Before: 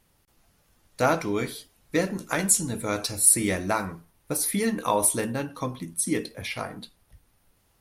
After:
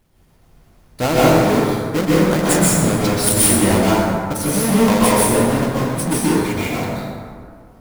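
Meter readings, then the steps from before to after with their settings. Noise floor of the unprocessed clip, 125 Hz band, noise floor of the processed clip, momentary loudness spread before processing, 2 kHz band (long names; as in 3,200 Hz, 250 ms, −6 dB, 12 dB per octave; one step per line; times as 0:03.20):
−66 dBFS, +15.0 dB, −52 dBFS, 14 LU, +8.5 dB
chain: each half-wave held at its own peak
low-shelf EQ 490 Hz +4 dB
dense smooth reverb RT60 2.1 s, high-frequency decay 0.45×, pre-delay 115 ms, DRR −8 dB
level −3.5 dB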